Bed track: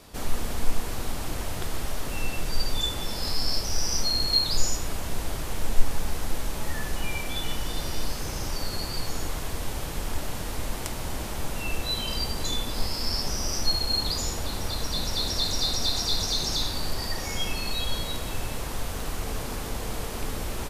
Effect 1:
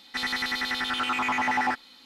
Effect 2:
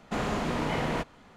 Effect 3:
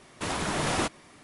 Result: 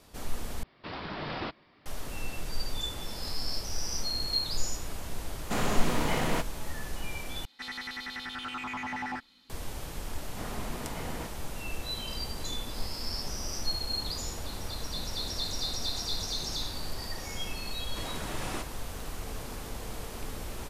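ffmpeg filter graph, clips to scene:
ffmpeg -i bed.wav -i cue0.wav -i cue1.wav -i cue2.wav -filter_complex "[3:a]asplit=2[link_01][link_02];[2:a]asplit=2[link_03][link_04];[0:a]volume=-7dB[link_05];[link_01]aresample=11025,aresample=44100[link_06];[link_03]aemphasis=mode=production:type=50fm[link_07];[1:a]asubboost=boost=5.5:cutoff=250[link_08];[link_05]asplit=3[link_09][link_10][link_11];[link_09]atrim=end=0.634[link_12];[link_06]atrim=end=1.23,asetpts=PTS-STARTPTS,volume=-8dB[link_13];[link_10]atrim=start=1.856:end=7.454[link_14];[link_08]atrim=end=2.05,asetpts=PTS-STARTPTS,volume=-10dB[link_15];[link_11]atrim=start=9.496[link_16];[link_07]atrim=end=1.36,asetpts=PTS-STARTPTS,volume=-0.5dB,afade=type=in:duration=0.004:curve=hsin,afade=type=out:start_time=1.356:duration=0.004:curve=hsin,adelay=5390[link_17];[link_04]atrim=end=1.36,asetpts=PTS-STARTPTS,volume=-11dB,afade=type=in:duration=0.004:curve=hsin,afade=type=out:start_time=1.356:duration=0.004:curve=hsin,adelay=10250[link_18];[link_02]atrim=end=1.23,asetpts=PTS-STARTPTS,volume=-10dB,afade=type=in:duration=0.004:curve=hsin,afade=type=out:start_time=1.226:duration=0.004:curve=hsin,adelay=17750[link_19];[link_12][link_13]acrossfade=duration=0.004:curve1=hsin:curve2=hsin[link_20];[link_20][link_14]acrossfade=duration=0.004:curve1=hsin:curve2=hsin[link_21];[link_21][link_15]acrossfade=duration=0.004:curve1=hsin:curve2=hsin[link_22];[link_22][link_16]acrossfade=duration=0.004:curve1=hsin:curve2=hsin[link_23];[link_23][link_17][link_18][link_19]amix=inputs=4:normalize=0" out.wav

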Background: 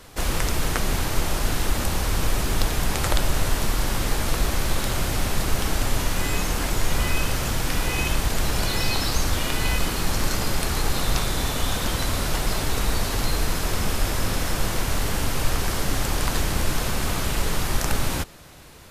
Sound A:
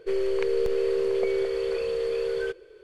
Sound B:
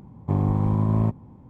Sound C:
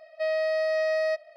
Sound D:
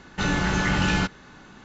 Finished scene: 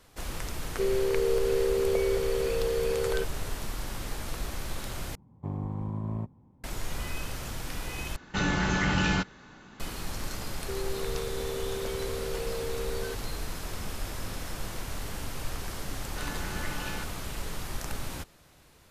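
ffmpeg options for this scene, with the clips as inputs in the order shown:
ffmpeg -i bed.wav -i cue0.wav -i cue1.wav -i cue2.wav -i cue3.wav -filter_complex "[1:a]asplit=2[link_01][link_02];[4:a]asplit=2[link_03][link_04];[0:a]volume=-12dB[link_05];[link_02]acompressor=threshold=-30dB:ratio=6:attack=3.2:release=140:knee=1:detection=peak[link_06];[link_04]highpass=280[link_07];[link_05]asplit=3[link_08][link_09][link_10];[link_08]atrim=end=5.154[link_11];[2:a]atrim=end=1.49,asetpts=PTS-STARTPTS,volume=-12dB[link_12];[link_09]atrim=start=6.636:end=8.164[link_13];[link_03]atrim=end=1.64,asetpts=PTS-STARTPTS,volume=-3.5dB[link_14];[link_10]atrim=start=9.796[link_15];[link_01]atrim=end=2.83,asetpts=PTS-STARTPTS,volume=-1.5dB,afade=type=in:duration=0.004:curve=hsin,afade=type=out:start_time=2.826:duration=0.004:curve=hsin,adelay=720[link_16];[link_06]atrim=end=2.83,asetpts=PTS-STARTPTS,volume=-2dB,afade=type=in:duration=0.004:curve=hsin,afade=type=out:start_time=2.826:duration=0.004:curve=hsin,adelay=10620[link_17];[link_07]atrim=end=1.64,asetpts=PTS-STARTPTS,volume=-13.5dB,afade=type=in:duration=0.004:curve=hsin,afade=type=out:start_time=1.636:duration=0.004:curve=hsin,adelay=15980[link_18];[link_11][link_12]acrossfade=duration=0.004:curve1=hsin:curve2=hsin[link_19];[link_19][link_13]acrossfade=duration=0.004:curve1=hsin:curve2=hsin[link_20];[link_20][link_14]acrossfade=duration=0.004:curve1=hsin:curve2=hsin[link_21];[link_21][link_15]acrossfade=duration=0.004:curve1=hsin:curve2=hsin[link_22];[link_22][link_16][link_17][link_18]amix=inputs=4:normalize=0" out.wav

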